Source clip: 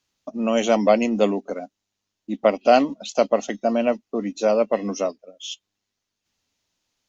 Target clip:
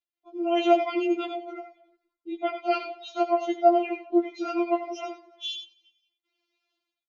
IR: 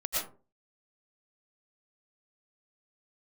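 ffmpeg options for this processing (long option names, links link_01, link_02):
-filter_complex "[0:a]dynaudnorm=framelen=110:gausssize=7:maxgain=7dB,acrusher=bits=10:mix=0:aa=0.000001,highpass=190,equalizer=frequency=280:width_type=q:width=4:gain=8,equalizer=frequency=490:width_type=q:width=4:gain=-9,equalizer=frequency=960:width_type=q:width=4:gain=-8,equalizer=frequency=1700:width_type=q:width=4:gain=-8,lowpass=frequency=3900:width=0.5412,lowpass=frequency=3900:width=1.3066,asplit=4[link_01][link_02][link_03][link_04];[link_02]adelay=181,afreqshift=-46,volume=-23.5dB[link_05];[link_03]adelay=362,afreqshift=-92,volume=-31.5dB[link_06];[link_04]adelay=543,afreqshift=-138,volume=-39.4dB[link_07];[link_01][link_05][link_06][link_07]amix=inputs=4:normalize=0[link_08];[1:a]atrim=start_sample=2205,afade=type=out:start_time=0.14:duration=0.01,atrim=end_sample=6615[link_09];[link_08][link_09]afir=irnorm=-1:irlink=0,afftfilt=real='re*4*eq(mod(b,16),0)':imag='im*4*eq(mod(b,16),0)':win_size=2048:overlap=0.75,volume=-1.5dB"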